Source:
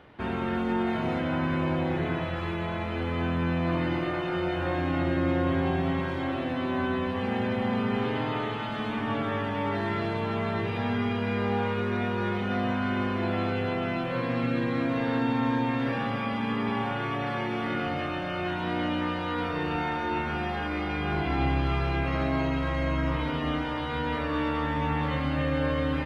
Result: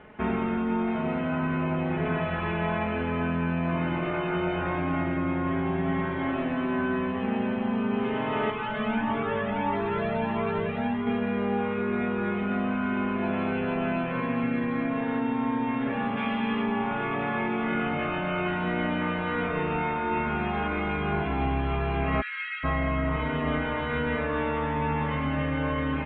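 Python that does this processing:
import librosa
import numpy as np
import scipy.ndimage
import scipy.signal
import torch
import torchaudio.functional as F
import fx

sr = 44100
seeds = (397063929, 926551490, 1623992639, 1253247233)

y = fx.comb_cascade(x, sr, direction='rising', hz=1.6, at=(8.5, 11.07))
y = fx.high_shelf(y, sr, hz=fx.line((16.16, 2200.0), (16.65, 2700.0)), db=11.5, at=(16.16, 16.65), fade=0.02)
y = fx.steep_highpass(y, sr, hz=1400.0, slope=72, at=(22.2, 22.63), fade=0.02)
y = scipy.signal.sosfilt(scipy.signal.butter(6, 2900.0, 'lowpass', fs=sr, output='sos'), y)
y = y + 0.64 * np.pad(y, (int(4.7 * sr / 1000.0), 0))[:len(y)]
y = fx.rider(y, sr, range_db=10, speed_s=0.5)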